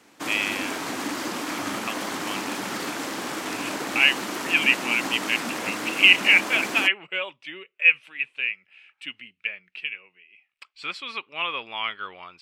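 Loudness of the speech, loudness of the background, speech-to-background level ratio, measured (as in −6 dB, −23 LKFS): −22.0 LKFS, −30.0 LKFS, 8.0 dB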